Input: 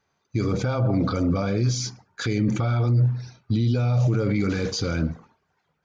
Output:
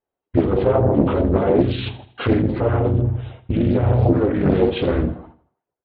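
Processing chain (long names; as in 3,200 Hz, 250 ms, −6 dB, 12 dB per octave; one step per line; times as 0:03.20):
hearing-aid frequency compression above 1,500 Hz 1.5 to 1
low-pass filter 3,300 Hz 24 dB per octave
mains-hum notches 50/100/150 Hz
noise gate −49 dBFS, range −24 dB
flat-topped bell 530 Hz +9.5 dB
in parallel at +1.5 dB: downward compressor 10 to 1, threshold −27 dBFS, peak gain reduction 13 dB
on the sum: multi-voice chorus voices 4, 0.86 Hz, delay 10 ms, depth 2.1 ms
on a send: repeating echo 80 ms, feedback 43%, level −15.5 dB
on the sum: pitch-shifted copies added −12 semitones −11 dB, −5 semitones −7 dB, −4 semitones −4 dB
highs frequency-modulated by the lows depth 0.64 ms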